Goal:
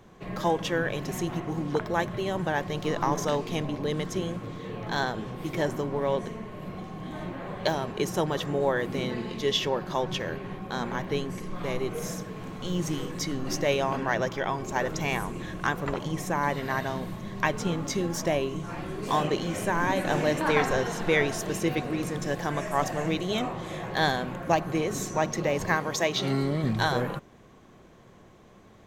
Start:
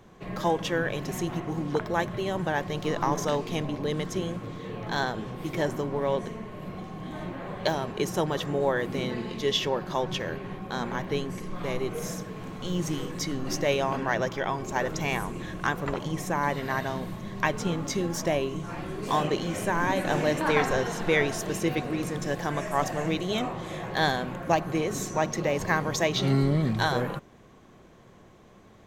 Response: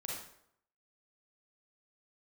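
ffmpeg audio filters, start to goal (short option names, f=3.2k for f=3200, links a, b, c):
-filter_complex "[0:a]asettb=1/sr,asplit=3[a][b][c];[a]atrim=end=25.754[d];[b]atrim=start=25.75:end=26.64,asetpts=PTS-STARTPTS,afade=t=in:d=0.004:c=qsin,afade=t=out:st=0.886:d=0.004:c=qsin,lowshelf=f=140:g=-11.5[e];[c]atrim=start=26.636[f];[d][e]acrossfade=d=0.004:c1=hsin:c2=qsin[g];[g][f]acrossfade=d=0.004:c1=qsin:c2=hsin"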